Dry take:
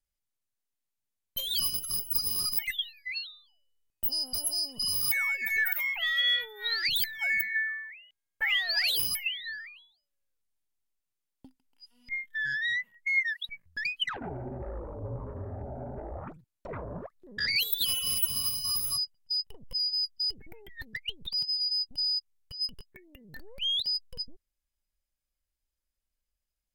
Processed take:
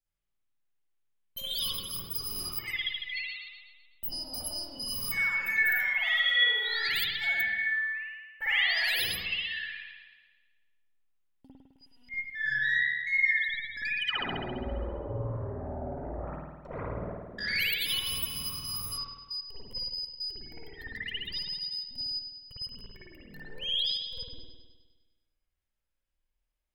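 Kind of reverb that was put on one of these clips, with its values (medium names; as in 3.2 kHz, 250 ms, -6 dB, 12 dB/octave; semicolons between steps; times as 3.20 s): spring tank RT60 1.3 s, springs 52 ms, chirp 75 ms, DRR -8.5 dB; trim -6.5 dB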